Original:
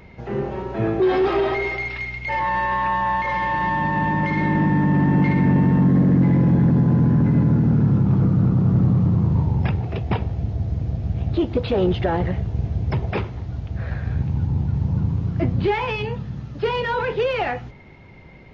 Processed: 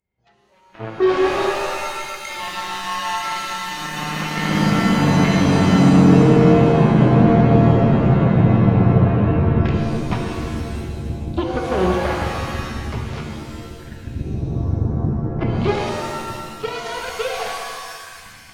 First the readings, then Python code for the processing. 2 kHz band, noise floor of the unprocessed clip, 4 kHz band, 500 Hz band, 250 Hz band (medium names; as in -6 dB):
+0.5 dB, -43 dBFS, no reading, +4.0 dB, +3.0 dB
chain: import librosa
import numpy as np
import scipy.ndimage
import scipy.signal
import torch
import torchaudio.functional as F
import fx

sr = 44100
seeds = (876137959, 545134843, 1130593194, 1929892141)

y = fx.recorder_agc(x, sr, target_db=-16.5, rise_db_per_s=32.0, max_gain_db=30)
y = fx.noise_reduce_blind(y, sr, reduce_db=23)
y = fx.cheby_harmonics(y, sr, harmonics=(3, 5, 7), levels_db=(-45, -32, -15), full_scale_db=-7.5)
y = fx.rev_shimmer(y, sr, seeds[0], rt60_s=1.8, semitones=7, shimmer_db=-2, drr_db=1.0)
y = y * librosa.db_to_amplitude(-1.0)